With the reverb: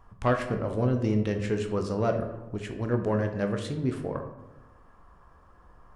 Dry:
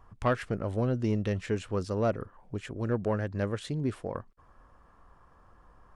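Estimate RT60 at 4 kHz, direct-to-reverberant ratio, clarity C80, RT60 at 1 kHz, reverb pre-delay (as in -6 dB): 0.55 s, 4.5 dB, 10.5 dB, 0.95 s, 12 ms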